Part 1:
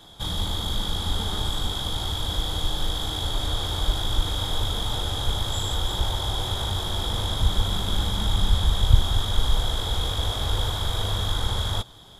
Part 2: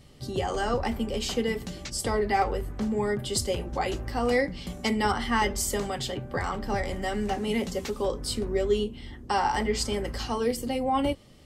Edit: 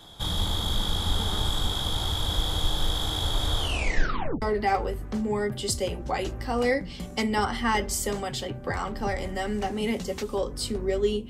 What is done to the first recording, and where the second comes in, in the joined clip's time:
part 1
0:03.58: tape stop 0.84 s
0:04.42: continue with part 2 from 0:02.09

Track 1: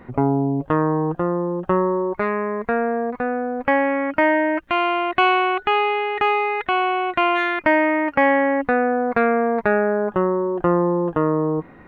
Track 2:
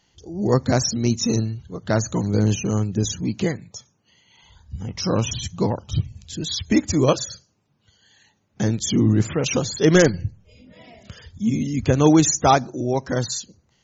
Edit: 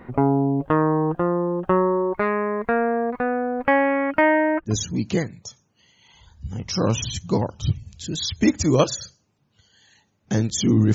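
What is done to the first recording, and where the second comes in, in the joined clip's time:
track 1
0:04.21–0:04.73: low-pass filter 3,800 Hz → 1,200 Hz
0:04.69: continue with track 2 from 0:02.98, crossfade 0.08 s

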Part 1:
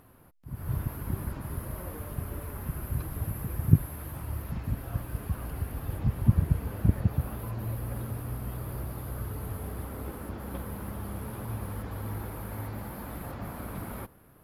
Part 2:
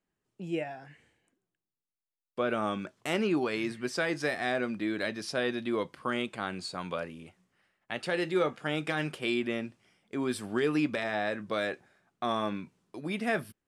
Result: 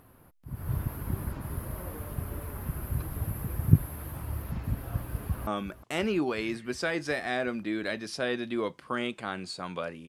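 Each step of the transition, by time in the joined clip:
part 1
0:05.20–0:05.47: delay throw 360 ms, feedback 75%, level −15 dB
0:05.47: continue with part 2 from 0:02.62

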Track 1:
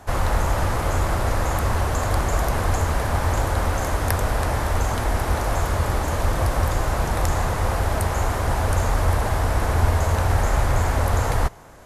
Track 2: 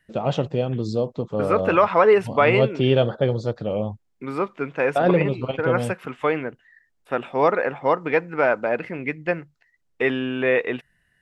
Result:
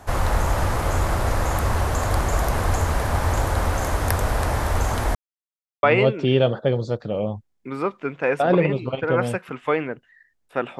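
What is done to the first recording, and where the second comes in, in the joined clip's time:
track 1
0:05.15–0:05.83: silence
0:05.83: continue with track 2 from 0:02.39

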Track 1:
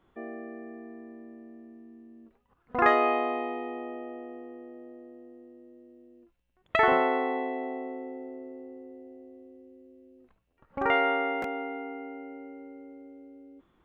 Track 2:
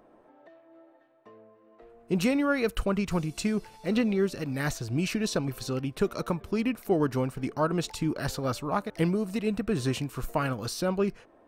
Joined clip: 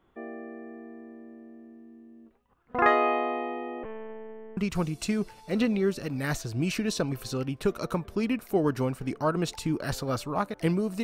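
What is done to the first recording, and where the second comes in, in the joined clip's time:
track 1
0:03.83–0:04.57: one-pitch LPC vocoder at 8 kHz 220 Hz
0:04.57: continue with track 2 from 0:02.93

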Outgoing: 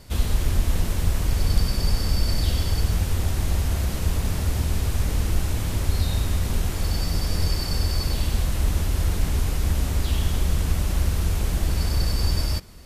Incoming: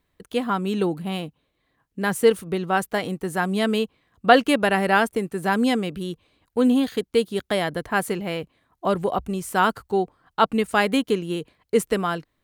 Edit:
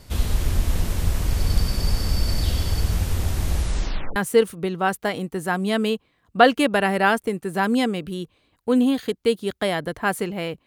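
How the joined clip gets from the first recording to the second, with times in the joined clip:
outgoing
0:03.51: tape stop 0.65 s
0:04.16: continue with incoming from 0:02.05

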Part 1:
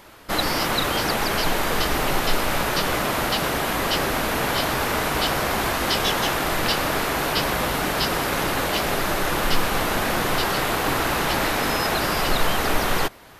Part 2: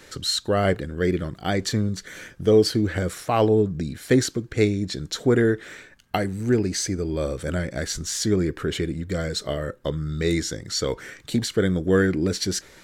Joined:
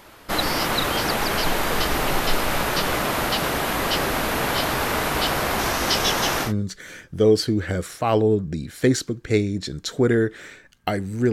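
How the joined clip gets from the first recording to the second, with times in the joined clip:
part 1
0:05.59–0:06.53: parametric band 5,800 Hz +7 dB 0.41 octaves
0:06.47: continue with part 2 from 0:01.74, crossfade 0.12 s

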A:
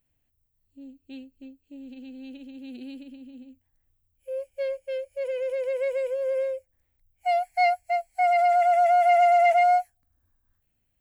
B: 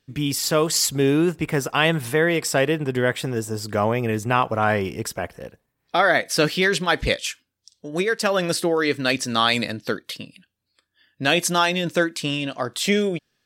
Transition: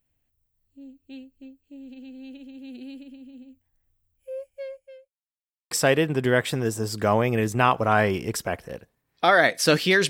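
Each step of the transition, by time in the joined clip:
A
0:04.11–0:05.11: fade out linear
0:05.11–0:05.71: silence
0:05.71: continue with B from 0:02.42

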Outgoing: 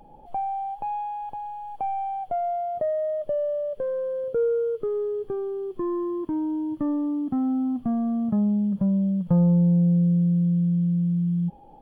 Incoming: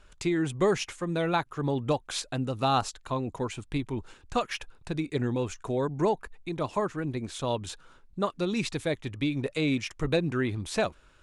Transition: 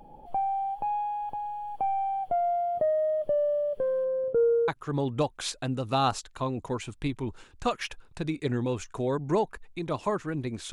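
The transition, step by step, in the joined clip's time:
outgoing
0:04.04–0:04.68: low-pass filter 1,800 Hz → 1,100 Hz
0:04.68: continue with incoming from 0:01.38

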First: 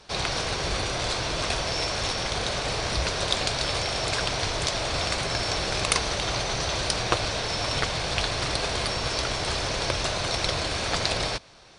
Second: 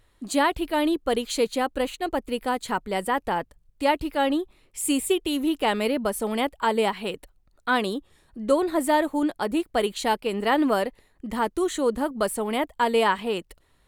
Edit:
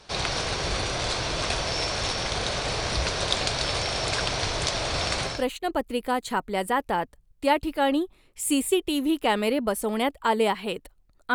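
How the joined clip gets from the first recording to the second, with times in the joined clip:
first
0:05.34: continue with second from 0:01.72, crossfade 0.22 s

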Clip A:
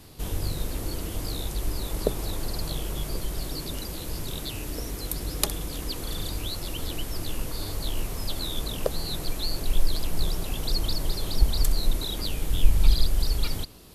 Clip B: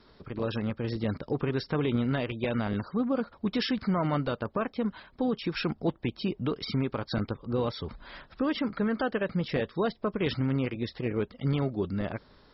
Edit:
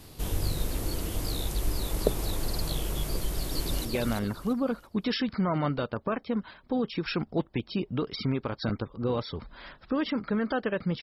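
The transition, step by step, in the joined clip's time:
clip A
0:03.18–0:03.85: delay throw 340 ms, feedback 30%, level −4 dB
0:03.85: continue with clip B from 0:02.34

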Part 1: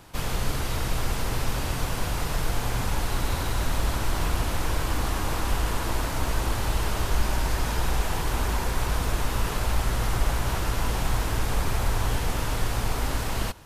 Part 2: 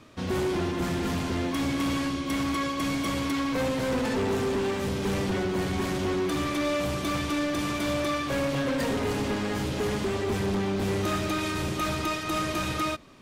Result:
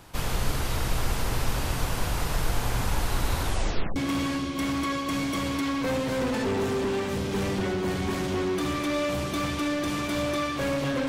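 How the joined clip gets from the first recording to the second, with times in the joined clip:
part 1
0:03.43: tape stop 0.53 s
0:03.96: continue with part 2 from 0:01.67

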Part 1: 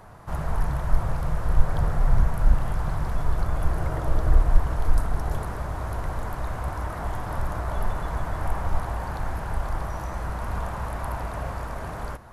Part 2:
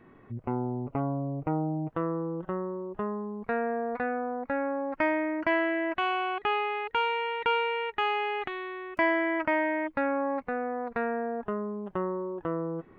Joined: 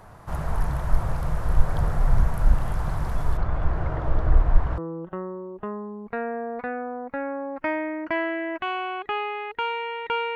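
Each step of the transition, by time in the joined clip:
part 1
0:03.37–0:04.78: low-pass filter 3,000 Hz 12 dB per octave
0:04.78: continue with part 2 from 0:02.14

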